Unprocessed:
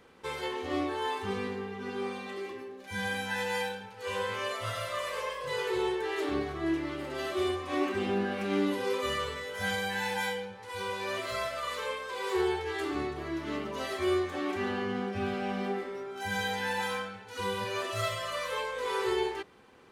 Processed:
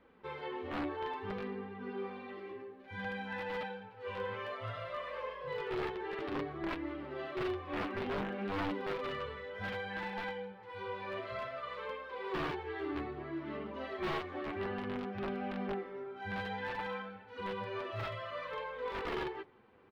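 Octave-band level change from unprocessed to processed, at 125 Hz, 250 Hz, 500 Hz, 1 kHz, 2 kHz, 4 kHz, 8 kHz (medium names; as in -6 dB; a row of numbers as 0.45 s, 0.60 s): -4.5 dB, -6.5 dB, -7.0 dB, -6.0 dB, -7.5 dB, -11.5 dB, under -20 dB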